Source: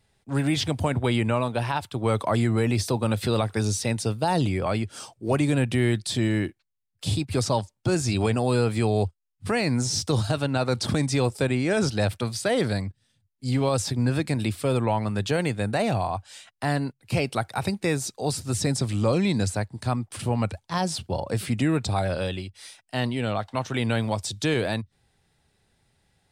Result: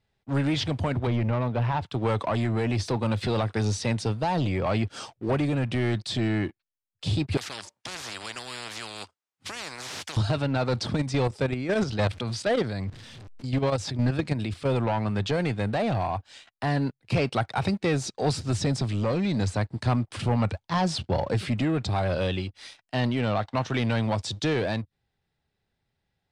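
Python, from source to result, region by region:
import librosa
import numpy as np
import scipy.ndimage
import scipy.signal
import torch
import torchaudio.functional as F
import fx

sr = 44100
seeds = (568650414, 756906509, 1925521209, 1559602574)

y = fx.chain(x, sr, fx.lowpass(hz=1900.0, slope=6),
    fx.low_shelf(hz=120.0, db=9.0), at=(1.07, 1.86))
y = fx.chain(y, sr, fx.highpass(hz=750.0, slope=6),
    fx.peak_eq(hz=3400.0, db=-9.0, octaves=2.3),
    fx.spectral_comp(ratio=10.0), at=(7.37, 10.17))
y = fx.chain(y, sr, fx.zero_step(step_db=-37.5),
    fx.level_steps(step_db=11), at=(10.83, 14.68))
y = fx.leveller(y, sr, passes=2)
y = scipy.signal.sosfilt(scipy.signal.butter(2, 4900.0, 'lowpass', fs=sr, output='sos'), y)
y = fx.rider(y, sr, range_db=3, speed_s=0.5)
y = y * librosa.db_to_amplitude(-5.5)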